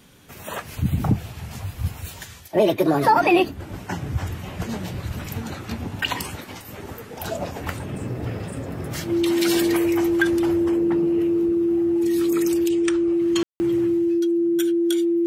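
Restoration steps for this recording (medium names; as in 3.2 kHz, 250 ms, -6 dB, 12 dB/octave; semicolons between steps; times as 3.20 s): band-stop 340 Hz, Q 30; room tone fill 13.43–13.60 s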